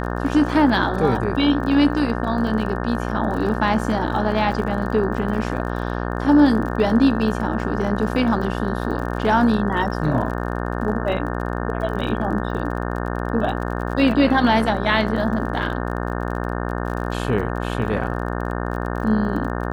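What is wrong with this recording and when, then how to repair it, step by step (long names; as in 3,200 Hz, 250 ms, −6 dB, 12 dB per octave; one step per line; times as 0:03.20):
mains buzz 60 Hz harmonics 30 −25 dBFS
surface crackle 37 per second −30 dBFS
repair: click removal
hum removal 60 Hz, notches 30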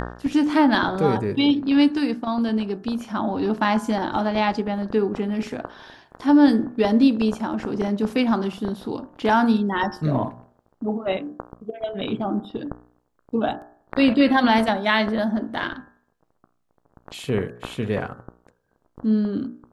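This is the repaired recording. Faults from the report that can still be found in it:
none of them is left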